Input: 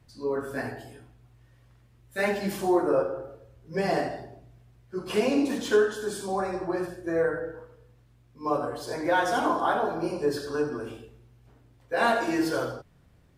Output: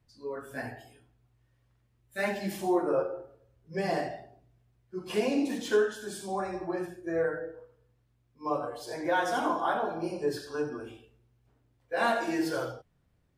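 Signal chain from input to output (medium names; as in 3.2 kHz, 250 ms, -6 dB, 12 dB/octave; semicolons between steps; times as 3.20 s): spectral noise reduction 8 dB; trim -3.5 dB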